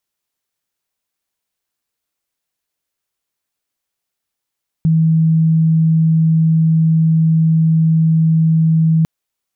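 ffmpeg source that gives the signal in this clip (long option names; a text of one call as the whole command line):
ffmpeg -f lavfi -i "sine=frequency=161:duration=4.2:sample_rate=44100,volume=9.06dB" out.wav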